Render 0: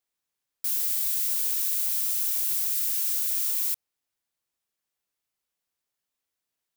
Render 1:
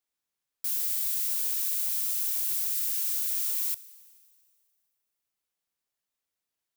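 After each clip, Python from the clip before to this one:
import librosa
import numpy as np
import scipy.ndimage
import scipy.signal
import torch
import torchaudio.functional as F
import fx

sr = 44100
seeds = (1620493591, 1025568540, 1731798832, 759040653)

y = fx.rev_schroeder(x, sr, rt60_s=2.1, comb_ms=29, drr_db=17.5)
y = y * 10.0 ** (-2.5 / 20.0)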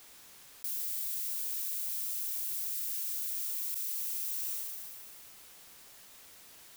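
y = fx.env_flatten(x, sr, amount_pct=100)
y = y * 10.0 ** (-7.5 / 20.0)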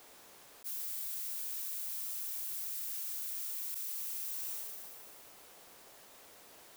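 y = fx.peak_eq(x, sr, hz=550.0, db=10.5, octaves=2.5)
y = fx.attack_slew(y, sr, db_per_s=570.0)
y = y * 10.0 ** (-4.0 / 20.0)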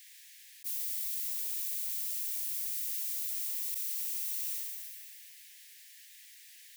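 y = scipy.signal.sosfilt(scipy.signal.butter(16, 1700.0, 'highpass', fs=sr, output='sos'), x)
y = y * 10.0 ** (4.0 / 20.0)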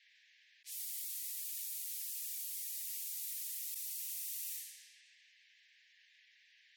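y = fx.env_lowpass(x, sr, base_hz=2400.0, full_db=-32.0)
y = fx.spec_gate(y, sr, threshold_db=-20, keep='strong')
y = y * 10.0 ** (-3.0 / 20.0)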